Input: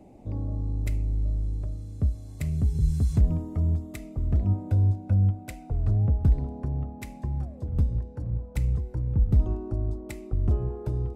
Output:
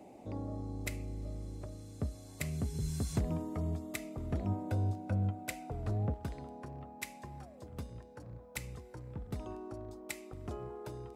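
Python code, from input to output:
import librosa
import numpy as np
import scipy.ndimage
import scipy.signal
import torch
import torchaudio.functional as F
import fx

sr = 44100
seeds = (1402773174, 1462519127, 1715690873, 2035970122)

y = fx.highpass(x, sr, hz=fx.steps((0.0, 550.0), (6.14, 1400.0)), slope=6)
y = y * 10.0 ** (3.5 / 20.0)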